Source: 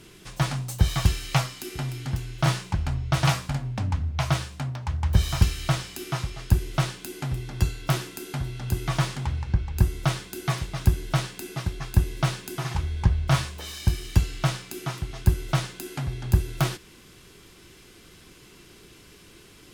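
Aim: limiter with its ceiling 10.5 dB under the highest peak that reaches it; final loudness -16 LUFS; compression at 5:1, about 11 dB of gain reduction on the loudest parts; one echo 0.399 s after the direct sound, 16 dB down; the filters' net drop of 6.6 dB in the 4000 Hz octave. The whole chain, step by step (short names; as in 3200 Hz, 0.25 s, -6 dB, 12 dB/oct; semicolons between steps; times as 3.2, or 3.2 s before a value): bell 4000 Hz -9 dB; compressor 5:1, threshold -25 dBFS; limiter -24.5 dBFS; echo 0.399 s -16 dB; gain +20 dB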